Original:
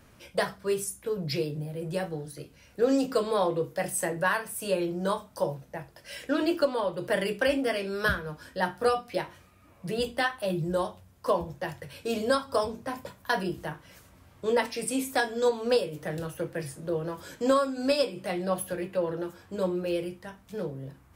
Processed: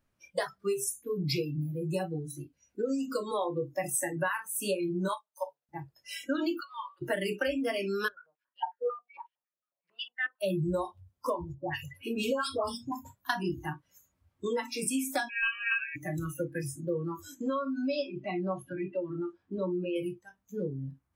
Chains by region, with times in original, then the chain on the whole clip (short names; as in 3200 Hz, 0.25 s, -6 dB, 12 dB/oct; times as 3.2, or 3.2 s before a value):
5.08–5.69 HPF 710 Hz + upward expander, over -52 dBFS
6.6–7.02 high shelf 4700 Hz -5.5 dB + compressor 10:1, threshold -28 dBFS + HPF 960 Hz 24 dB/oct
8.08–10.41 G.711 law mismatch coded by A + stepped band-pass 11 Hz 500–3000 Hz
11.54–12.92 dispersion highs, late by 0.136 s, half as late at 1300 Hz + dynamic EQ 2800 Hz, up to +6 dB, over -57 dBFS, Q 5
15.29–15.96 ring modulator 910 Hz + inverted band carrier 3000 Hz
17.41–19.96 LPF 4000 Hz + compressor 2:1, threshold -31 dBFS + notch 500 Hz, Q 11
whole clip: compressor 16:1, threshold -28 dBFS; notch 450 Hz, Q 15; spectral noise reduction 25 dB; gain +2.5 dB